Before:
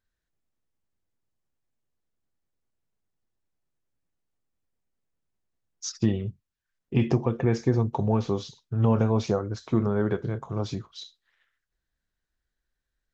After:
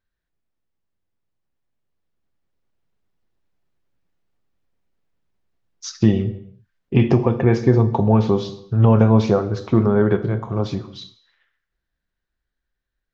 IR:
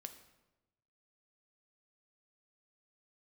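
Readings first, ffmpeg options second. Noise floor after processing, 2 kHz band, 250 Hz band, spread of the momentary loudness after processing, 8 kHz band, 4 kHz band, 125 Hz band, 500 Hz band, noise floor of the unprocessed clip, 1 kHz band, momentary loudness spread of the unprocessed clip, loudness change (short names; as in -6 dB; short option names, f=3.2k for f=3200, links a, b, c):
-81 dBFS, +8.0 dB, +8.5 dB, 13 LU, n/a, +5.0 dB, +8.5 dB, +8.5 dB, -84 dBFS, +8.0 dB, 13 LU, +8.5 dB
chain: -filter_complex "[0:a]dynaudnorm=f=440:g=11:m=8dB,asplit=2[a][b];[1:a]atrim=start_sample=2205,afade=t=out:st=0.39:d=0.01,atrim=end_sample=17640,lowpass=5k[c];[b][c]afir=irnorm=-1:irlink=0,volume=11dB[d];[a][d]amix=inputs=2:normalize=0,volume=-7.5dB"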